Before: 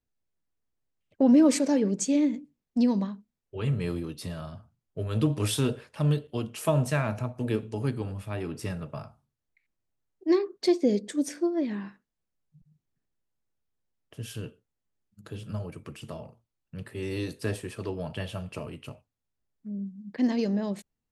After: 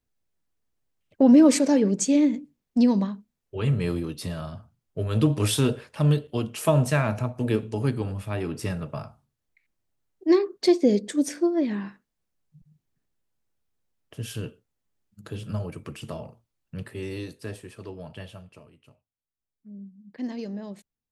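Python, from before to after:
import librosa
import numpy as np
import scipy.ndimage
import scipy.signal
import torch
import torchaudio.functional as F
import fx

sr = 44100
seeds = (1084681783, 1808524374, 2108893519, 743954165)

y = fx.gain(x, sr, db=fx.line((16.78, 4.0), (17.39, -5.5), (18.25, -5.5), (18.73, -16.0), (19.77, -7.0)))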